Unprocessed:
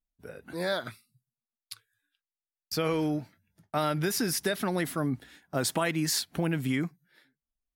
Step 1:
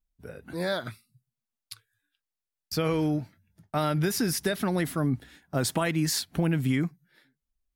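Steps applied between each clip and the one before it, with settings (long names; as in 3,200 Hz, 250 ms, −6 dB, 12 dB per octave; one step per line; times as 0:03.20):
low-shelf EQ 160 Hz +9.5 dB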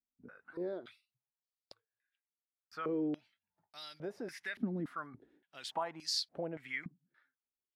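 band-pass on a step sequencer 3.5 Hz 250–4,600 Hz
level −1 dB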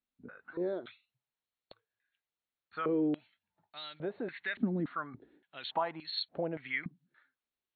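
linear-phase brick-wall low-pass 4,400 Hz
level +4.5 dB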